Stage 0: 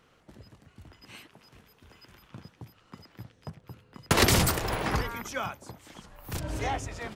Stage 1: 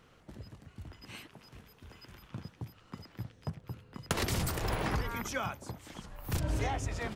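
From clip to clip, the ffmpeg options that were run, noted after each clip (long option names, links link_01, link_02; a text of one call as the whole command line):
ffmpeg -i in.wav -af "acompressor=threshold=-30dB:ratio=16,lowshelf=frequency=180:gain=5.5" out.wav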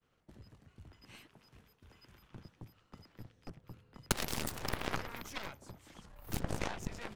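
ffmpeg -i in.wav -af "agate=range=-33dB:threshold=-55dB:ratio=3:detection=peak,aeval=exprs='0.188*(cos(1*acos(clip(val(0)/0.188,-1,1)))-cos(1*PI/2))+0.0473*(cos(4*acos(clip(val(0)/0.188,-1,1)))-cos(4*PI/2))+0.0376*(cos(7*acos(clip(val(0)/0.188,-1,1)))-cos(7*PI/2))':channel_layout=same" out.wav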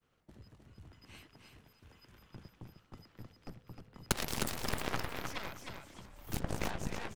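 ffmpeg -i in.wav -af "aecho=1:1:309|618|927:0.531|0.106|0.0212" out.wav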